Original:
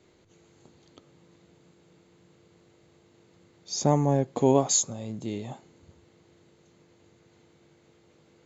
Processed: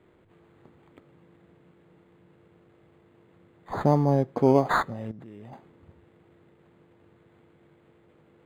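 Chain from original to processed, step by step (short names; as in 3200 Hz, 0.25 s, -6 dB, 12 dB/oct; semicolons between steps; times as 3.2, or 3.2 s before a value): 5.11–5.53 level quantiser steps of 23 dB; decimation joined by straight lines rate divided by 8×; gain +1.5 dB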